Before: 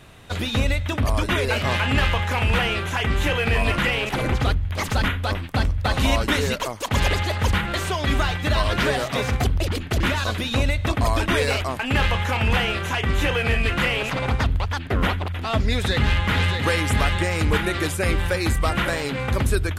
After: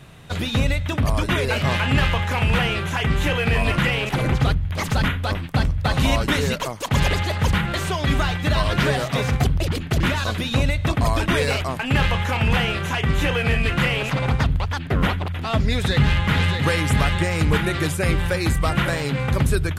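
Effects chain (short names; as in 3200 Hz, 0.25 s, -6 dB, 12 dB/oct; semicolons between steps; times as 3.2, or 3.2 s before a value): bell 150 Hz +11 dB 0.43 oct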